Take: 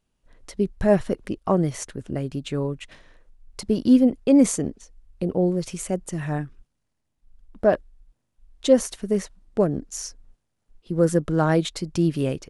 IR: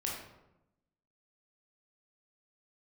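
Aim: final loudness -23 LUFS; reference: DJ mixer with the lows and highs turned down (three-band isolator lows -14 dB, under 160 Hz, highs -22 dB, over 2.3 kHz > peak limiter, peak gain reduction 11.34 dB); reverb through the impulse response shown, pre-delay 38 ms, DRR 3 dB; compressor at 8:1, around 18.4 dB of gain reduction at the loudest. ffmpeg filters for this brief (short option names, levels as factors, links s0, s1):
-filter_complex "[0:a]acompressor=threshold=0.0282:ratio=8,asplit=2[s0][s1];[1:a]atrim=start_sample=2205,adelay=38[s2];[s1][s2]afir=irnorm=-1:irlink=0,volume=0.501[s3];[s0][s3]amix=inputs=2:normalize=0,acrossover=split=160 2300:gain=0.2 1 0.0794[s4][s5][s6];[s4][s5][s6]amix=inputs=3:normalize=0,volume=7.5,alimiter=limit=0.251:level=0:latency=1"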